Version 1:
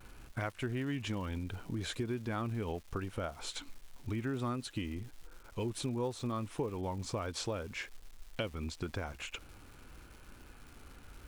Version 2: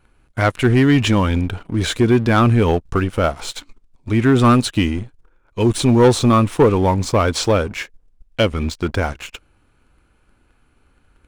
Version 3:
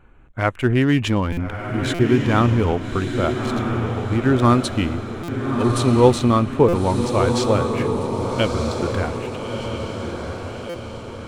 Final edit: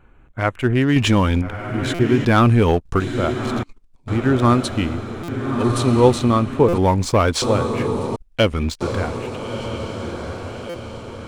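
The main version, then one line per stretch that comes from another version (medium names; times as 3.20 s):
3
0.96–1.42 s: from 2
2.25–3.00 s: from 2
3.63–4.08 s: from 2
6.78–7.42 s: from 2
8.16–8.81 s: from 2
not used: 1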